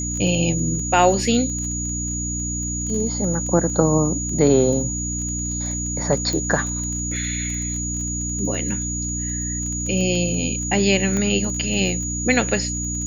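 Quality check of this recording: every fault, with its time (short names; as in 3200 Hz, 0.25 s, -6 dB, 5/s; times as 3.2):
crackle 19/s -27 dBFS
hum 60 Hz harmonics 5 -28 dBFS
tone 6800 Hz -26 dBFS
6.33 pop -12 dBFS
11.17 pop -12 dBFS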